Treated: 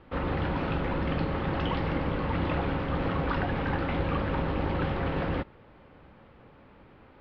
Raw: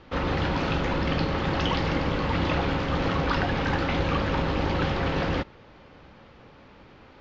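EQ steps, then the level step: air absorption 320 m; -2.5 dB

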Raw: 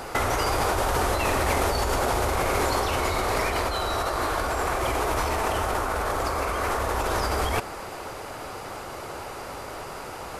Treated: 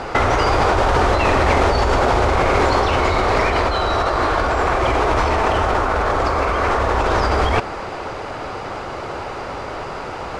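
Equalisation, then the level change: air absorption 130 m; +9.0 dB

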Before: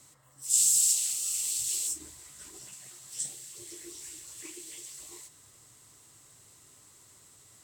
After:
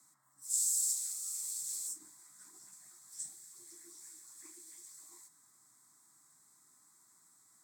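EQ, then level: HPF 180 Hz 24 dB/oct; fixed phaser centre 1200 Hz, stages 4; -7.0 dB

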